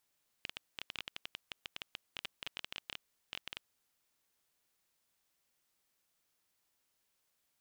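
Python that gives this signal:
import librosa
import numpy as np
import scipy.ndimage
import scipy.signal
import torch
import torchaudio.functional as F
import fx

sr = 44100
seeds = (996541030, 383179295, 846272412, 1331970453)

y = fx.geiger_clicks(sr, seeds[0], length_s=3.25, per_s=13.0, level_db=-23.0)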